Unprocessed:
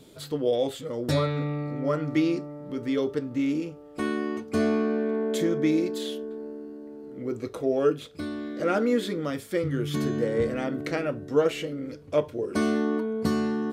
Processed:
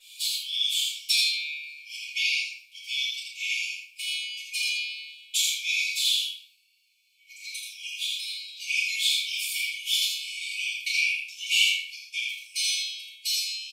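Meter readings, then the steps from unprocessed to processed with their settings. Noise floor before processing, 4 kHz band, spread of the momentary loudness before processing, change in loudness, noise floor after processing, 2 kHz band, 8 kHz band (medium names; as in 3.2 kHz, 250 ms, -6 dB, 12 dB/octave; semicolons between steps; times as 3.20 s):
-46 dBFS, +17.0 dB, 10 LU, +1.5 dB, -61 dBFS, +9.5 dB, +15.5 dB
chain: brick-wall FIR high-pass 2.2 kHz; delay 81 ms -3.5 dB; simulated room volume 120 m³, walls mixed, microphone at 4.9 m; tape noise reduction on one side only decoder only; trim +1 dB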